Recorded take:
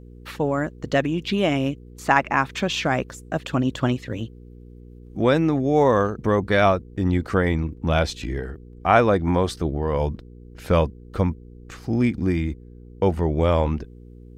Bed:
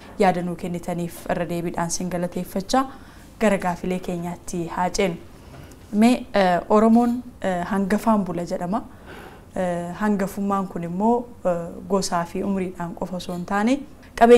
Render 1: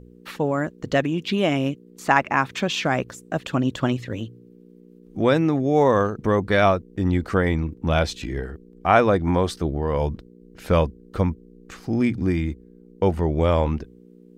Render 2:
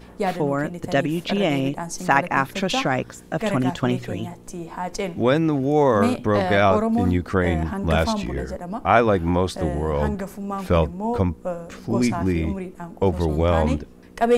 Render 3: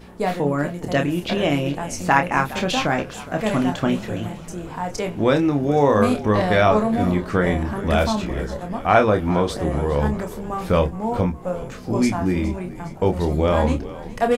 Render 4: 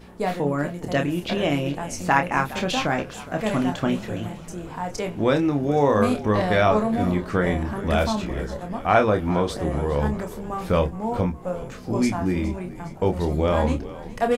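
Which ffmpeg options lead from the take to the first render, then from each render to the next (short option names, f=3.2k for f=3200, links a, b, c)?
-af "bandreject=f=60:t=h:w=4,bandreject=f=120:t=h:w=4"
-filter_complex "[1:a]volume=-6dB[a];[0:a][a]amix=inputs=2:normalize=0"
-filter_complex "[0:a]asplit=2[a][b];[b]adelay=28,volume=-6dB[c];[a][c]amix=inputs=2:normalize=0,asplit=7[d][e][f][g][h][i][j];[e]adelay=413,afreqshift=-45,volume=-16.5dB[k];[f]adelay=826,afreqshift=-90,volume=-20.5dB[l];[g]adelay=1239,afreqshift=-135,volume=-24.5dB[m];[h]adelay=1652,afreqshift=-180,volume=-28.5dB[n];[i]adelay=2065,afreqshift=-225,volume=-32.6dB[o];[j]adelay=2478,afreqshift=-270,volume=-36.6dB[p];[d][k][l][m][n][o][p]amix=inputs=7:normalize=0"
-af "volume=-2.5dB"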